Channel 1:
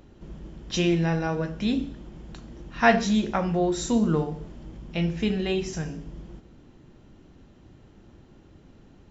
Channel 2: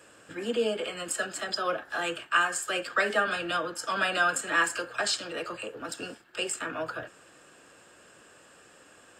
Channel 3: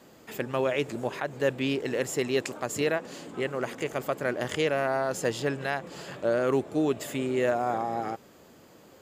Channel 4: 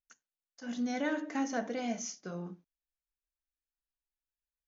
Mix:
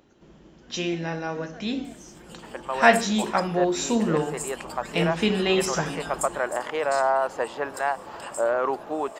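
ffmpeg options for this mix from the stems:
-filter_complex "[0:a]lowshelf=f=82:g=-11.5,volume=-2dB,asplit=2[a][b];[1:a]equalizer=f=1.2k:w=0.33:g=-5.5,acompressor=threshold=-45dB:ratio=3,crystalizer=i=6:c=0,adelay=1850,volume=-13dB[c];[2:a]acontrast=79,bandpass=f=930:t=q:w=2.2:csg=0,adelay=2150,volume=-5.5dB[d];[3:a]volume=-13dB[e];[b]apad=whole_len=487234[f];[c][f]sidechaingate=range=-7dB:threshold=-47dB:ratio=16:detection=peak[g];[a][g][d][e]amix=inputs=4:normalize=0,lowshelf=f=210:g=-8.5,dynaudnorm=f=210:g=17:m=10dB"

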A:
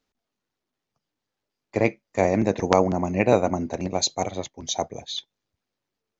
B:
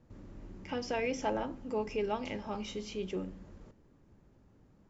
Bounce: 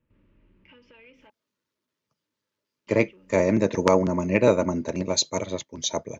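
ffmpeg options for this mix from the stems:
-filter_complex "[0:a]highpass=91,adelay=1150,volume=1dB[a];[1:a]acompressor=threshold=-37dB:ratio=6,asoftclip=type=tanh:threshold=-34.5dB,lowpass=f=2.7k:t=q:w=3.4,volume=-12.5dB,asplit=3[b][c][d];[b]atrim=end=1.3,asetpts=PTS-STARTPTS,afade=t=out:st=1.296:d=0.004:c=hsin[e];[c]atrim=start=1.3:end=2.87,asetpts=PTS-STARTPTS,volume=0[f];[d]atrim=start=2.87,asetpts=PTS-STARTPTS,afade=t=in:d=0.004:c=hsin[g];[e][f][g]concat=n=3:v=0:a=1[h];[a][h]amix=inputs=2:normalize=0,asuperstop=centerf=750:order=8:qfactor=4.2,asoftclip=type=tanh:threshold=-1dB"

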